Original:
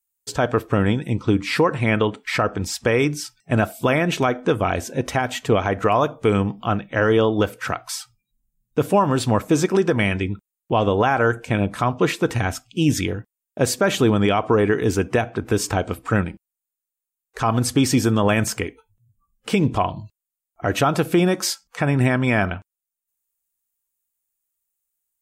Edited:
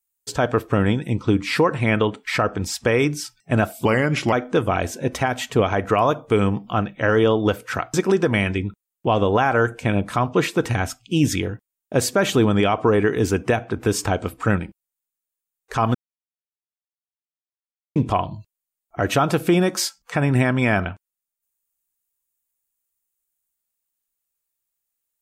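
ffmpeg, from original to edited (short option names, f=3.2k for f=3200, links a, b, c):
-filter_complex "[0:a]asplit=6[a][b][c][d][e][f];[a]atrim=end=3.854[g];[b]atrim=start=3.85:end=4.26,asetpts=PTS-STARTPTS,asetrate=37926,aresample=44100,atrim=end_sample=21024,asetpts=PTS-STARTPTS[h];[c]atrim=start=4.256:end=7.872[i];[d]atrim=start=9.588:end=17.6,asetpts=PTS-STARTPTS,afade=t=out:st=8.008:d=0.004:c=hsin[j];[e]atrim=start=17.6:end=19.61,asetpts=PTS-STARTPTS,volume=0[k];[f]atrim=start=19.61,asetpts=PTS-STARTPTS,afade=t=in:d=0.004:c=hsin[l];[g][h]acrossfade=d=0.004:c1=hsin:c2=hsin[m];[m][i]acrossfade=d=0.004:c1=hsin:c2=hsin[n];[j][k][l]concat=n=3:v=0:a=1[o];[n][o]acrossfade=d=0.004:c1=hsin:c2=hsin"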